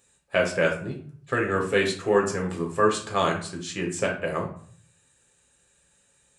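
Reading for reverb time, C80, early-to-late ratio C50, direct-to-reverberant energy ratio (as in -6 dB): 0.50 s, 12.0 dB, 7.0 dB, -0.5 dB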